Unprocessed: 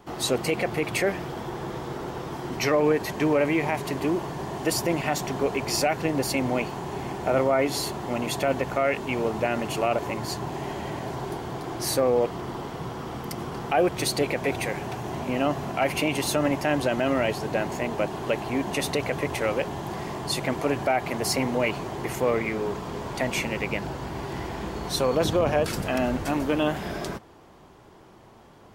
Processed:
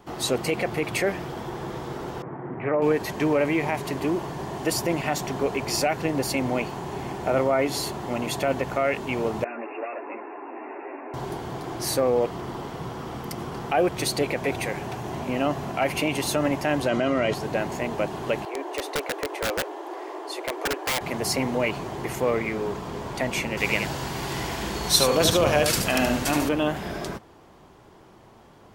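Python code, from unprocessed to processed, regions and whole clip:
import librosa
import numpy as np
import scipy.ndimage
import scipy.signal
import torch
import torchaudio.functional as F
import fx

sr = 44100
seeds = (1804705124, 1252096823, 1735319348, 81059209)

y = fx.chain(x, sr, fx.cheby1_bandpass(low_hz=110.0, high_hz=2000.0, order=3),
    fx.air_absorb(metres=490.0),
    fx.doppler_dist(depth_ms=0.15), at=(2.22, 2.82))
y = fx.chain(y, sr, fx.overload_stage(gain_db=25.5),
    fx.brickwall_bandpass(low_hz=240.0, high_hz=2800.0),
    fx.ensemble(), at=(9.44, 11.14))
y = fx.chain(y, sr, fx.lowpass(hz=7700.0, slope=12),
    fx.notch_comb(f0_hz=870.0),
    fx.env_flatten(amount_pct=70), at=(16.89, 17.34))
y = fx.chain(y, sr, fx.steep_highpass(hz=300.0, slope=96),
    fx.high_shelf(hz=2300.0, db=-10.5),
    fx.overflow_wrap(gain_db=20.0), at=(18.45, 21.01))
y = fx.chain(y, sr, fx.high_shelf(hz=2100.0, db=12.0),
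    fx.echo_single(ms=74, db=-6.0), at=(23.57, 26.49))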